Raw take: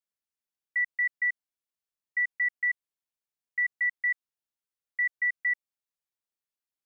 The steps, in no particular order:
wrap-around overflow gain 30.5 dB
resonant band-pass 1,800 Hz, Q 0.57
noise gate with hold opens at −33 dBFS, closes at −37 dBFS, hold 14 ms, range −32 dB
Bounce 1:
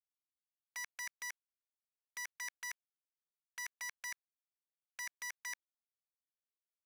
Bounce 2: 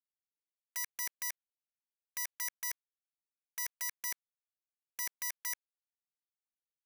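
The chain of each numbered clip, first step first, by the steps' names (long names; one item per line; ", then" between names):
noise gate with hold, then wrap-around overflow, then resonant band-pass
resonant band-pass, then noise gate with hold, then wrap-around overflow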